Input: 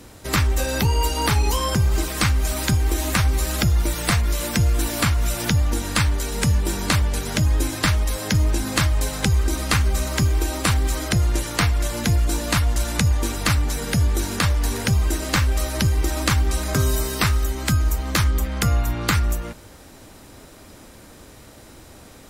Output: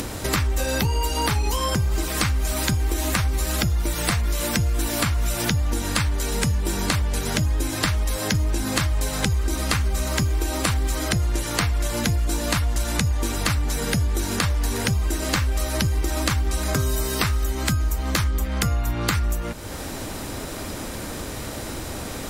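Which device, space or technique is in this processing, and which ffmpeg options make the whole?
upward and downward compression: -af "acompressor=mode=upward:threshold=-21dB:ratio=2.5,acompressor=threshold=-20dB:ratio=6,volume=1.5dB"

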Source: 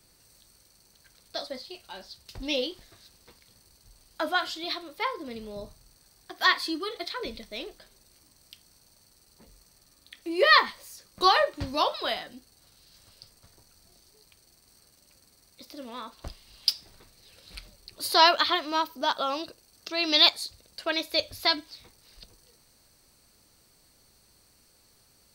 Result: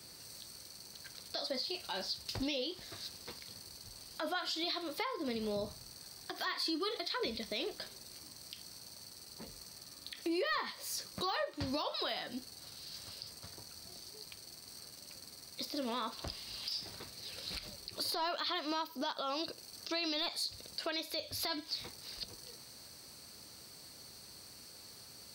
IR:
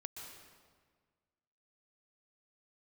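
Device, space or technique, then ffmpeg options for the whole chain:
broadcast voice chain: -af "highpass=84,deesser=0.7,acompressor=threshold=-40dB:ratio=4,equalizer=f=4.7k:t=o:w=0.54:g=5.5,alimiter=level_in=9.5dB:limit=-24dB:level=0:latency=1:release=63,volume=-9.5dB,volume=6.5dB"

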